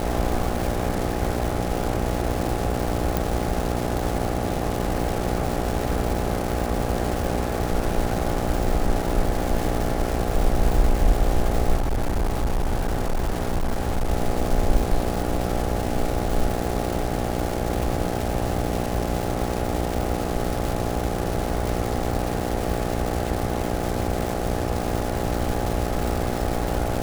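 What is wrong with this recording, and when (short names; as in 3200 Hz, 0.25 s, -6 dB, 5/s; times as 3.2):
buzz 60 Hz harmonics 14 -27 dBFS
crackle 530/s -25 dBFS
3.17 pop
11.76–14.11 clipped -18.5 dBFS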